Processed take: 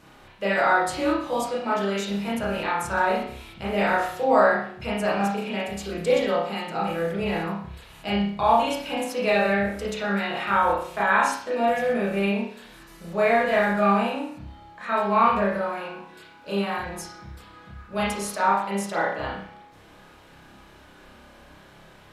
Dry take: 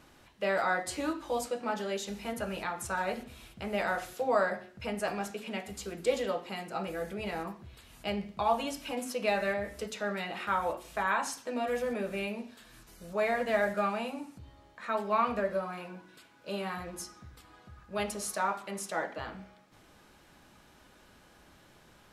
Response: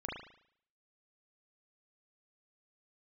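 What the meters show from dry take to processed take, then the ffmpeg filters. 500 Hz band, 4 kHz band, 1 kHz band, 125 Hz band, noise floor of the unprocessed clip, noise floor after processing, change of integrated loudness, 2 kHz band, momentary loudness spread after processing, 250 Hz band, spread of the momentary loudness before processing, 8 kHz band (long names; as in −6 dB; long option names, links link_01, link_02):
+8.5 dB, +8.0 dB, +10.0 dB, +11.0 dB, −60 dBFS, −51 dBFS, +9.5 dB, +9.0 dB, 14 LU, +10.5 dB, 14 LU, +3.0 dB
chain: -filter_complex "[1:a]atrim=start_sample=2205,asetrate=52920,aresample=44100[link_01];[0:a][link_01]afir=irnorm=-1:irlink=0,volume=9dB"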